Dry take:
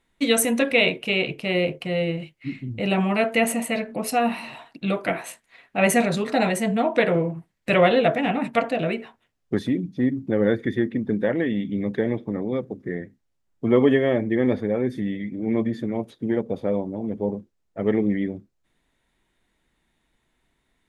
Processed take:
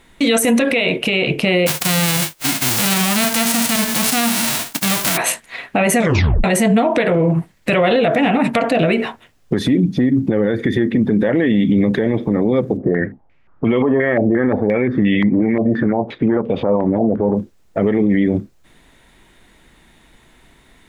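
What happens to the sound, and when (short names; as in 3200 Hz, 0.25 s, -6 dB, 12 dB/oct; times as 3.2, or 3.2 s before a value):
1.66–5.16 spectral whitening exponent 0.1
5.99 tape stop 0.45 s
12.77–17.35 stepped low-pass 5.7 Hz 670–2800 Hz
whole clip: compressor 4:1, threshold -27 dBFS; maximiser +26.5 dB; gain -6 dB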